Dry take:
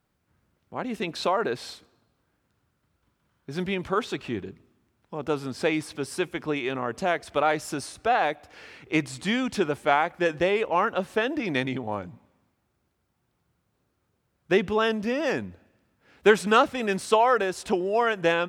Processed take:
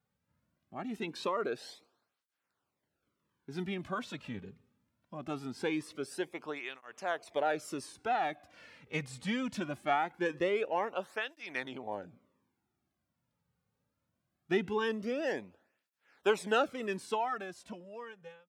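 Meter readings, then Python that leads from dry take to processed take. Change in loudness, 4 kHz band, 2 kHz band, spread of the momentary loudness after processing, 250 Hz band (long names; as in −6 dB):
−9.5 dB, −10.0 dB, −10.0 dB, 14 LU, −9.5 dB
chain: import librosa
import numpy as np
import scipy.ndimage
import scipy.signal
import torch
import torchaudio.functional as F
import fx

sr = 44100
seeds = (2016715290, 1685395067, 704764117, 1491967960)

y = fx.fade_out_tail(x, sr, length_s=1.99)
y = fx.flanger_cancel(y, sr, hz=0.22, depth_ms=3.1)
y = y * librosa.db_to_amplitude(-6.5)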